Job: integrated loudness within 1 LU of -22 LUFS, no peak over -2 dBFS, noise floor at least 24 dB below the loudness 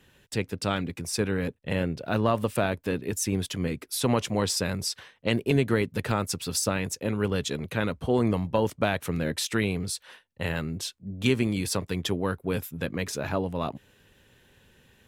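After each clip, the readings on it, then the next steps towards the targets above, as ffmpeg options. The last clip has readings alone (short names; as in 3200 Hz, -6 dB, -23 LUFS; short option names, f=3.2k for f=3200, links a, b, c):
loudness -28.5 LUFS; peak -9.5 dBFS; loudness target -22.0 LUFS
-> -af "volume=6.5dB"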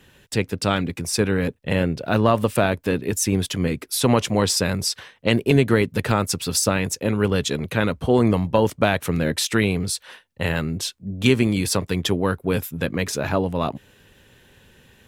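loudness -22.0 LUFS; peak -3.0 dBFS; noise floor -58 dBFS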